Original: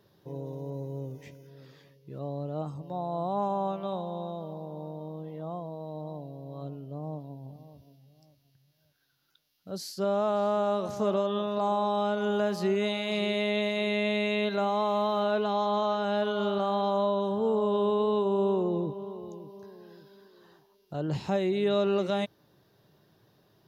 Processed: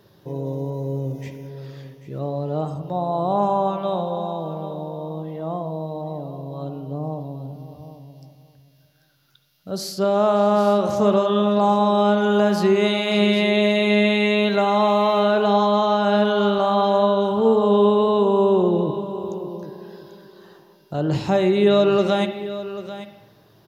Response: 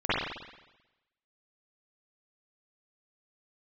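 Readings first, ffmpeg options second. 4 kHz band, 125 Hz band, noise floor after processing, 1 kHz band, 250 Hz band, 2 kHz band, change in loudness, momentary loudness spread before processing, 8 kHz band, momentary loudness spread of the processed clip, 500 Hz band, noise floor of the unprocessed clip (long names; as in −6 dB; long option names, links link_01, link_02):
+9.5 dB, +10.0 dB, −55 dBFS, +9.5 dB, +10.5 dB, +9.5 dB, +9.5 dB, 14 LU, can't be measured, 16 LU, +9.5 dB, −67 dBFS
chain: -filter_complex "[0:a]aecho=1:1:790:0.211,asplit=2[link_01][link_02];[1:a]atrim=start_sample=2205[link_03];[link_02][link_03]afir=irnorm=-1:irlink=0,volume=-22.5dB[link_04];[link_01][link_04]amix=inputs=2:normalize=0,volume=8.5dB"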